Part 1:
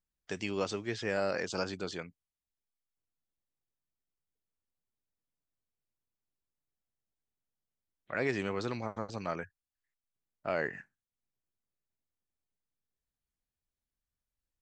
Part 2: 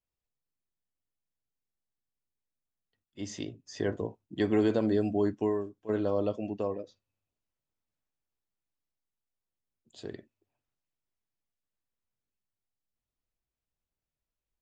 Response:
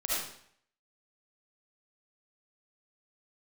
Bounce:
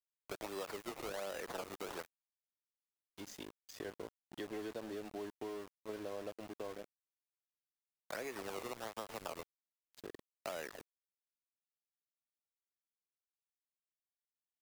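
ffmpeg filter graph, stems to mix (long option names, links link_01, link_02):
-filter_complex "[0:a]highpass=frequency=300:poles=1,acrusher=samples=19:mix=1:aa=0.000001:lfo=1:lforange=19:lforate=1.3,acompressor=threshold=-37dB:ratio=6,volume=1.5dB[link_01];[1:a]acompressor=threshold=-36dB:ratio=2.5,volume=-4dB[link_02];[link_01][link_02]amix=inputs=2:normalize=0,acrossover=split=330|1200[link_03][link_04][link_05];[link_03]acompressor=threshold=-57dB:ratio=4[link_06];[link_04]acompressor=threshold=-40dB:ratio=4[link_07];[link_05]acompressor=threshold=-47dB:ratio=4[link_08];[link_06][link_07][link_08]amix=inputs=3:normalize=0,aeval=exprs='val(0)*gte(abs(val(0)),0.00422)':channel_layout=same"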